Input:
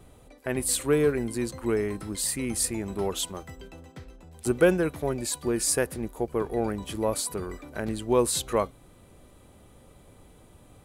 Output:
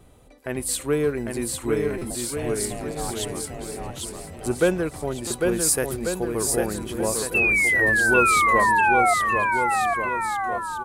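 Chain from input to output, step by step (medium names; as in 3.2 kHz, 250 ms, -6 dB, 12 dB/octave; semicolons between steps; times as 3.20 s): 2.10–3.21 s: ring modulator 360 Hz; 5.51–6.77 s: treble shelf 10 kHz +12 dB; 7.34–9.14 s: painted sound fall 690–2700 Hz -20 dBFS; on a send: bouncing-ball echo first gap 800 ms, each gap 0.8×, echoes 5; on the sum: buffer glitch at 1.98/5.27 s, samples 256, times 5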